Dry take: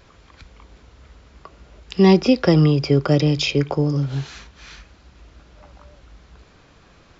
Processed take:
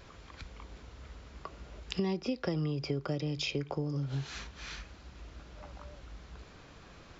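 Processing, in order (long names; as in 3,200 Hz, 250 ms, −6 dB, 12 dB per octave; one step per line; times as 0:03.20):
downward compressor 5 to 1, threshold −30 dBFS, peak gain reduction 19 dB
level −2 dB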